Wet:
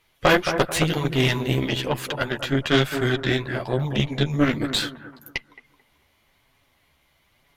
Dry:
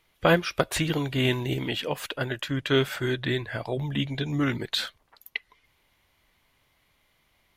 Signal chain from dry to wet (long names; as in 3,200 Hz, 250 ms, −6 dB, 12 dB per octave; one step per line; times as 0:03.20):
multi-voice chorus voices 2, 1 Hz, delay 11 ms, depth 4 ms
bucket-brigade delay 219 ms, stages 2,048, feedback 38%, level −8 dB
harmonic generator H 6 −16 dB, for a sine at −9.5 dBFS
level +6 dB